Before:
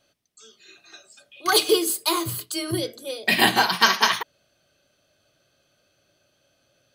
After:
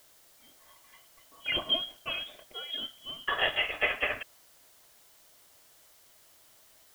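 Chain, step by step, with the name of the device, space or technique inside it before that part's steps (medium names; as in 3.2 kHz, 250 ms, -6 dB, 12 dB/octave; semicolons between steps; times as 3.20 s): scrambled radio voice (band-pass 300–2800 Hz; frequency inversion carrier 3.6 kHz; white noise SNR 24 dB); graphic EQ with 31 bands 200 Hz -6 dB, 630 Hz +7 dB, 2.5 kHz -4 dB; trim -7.5 dB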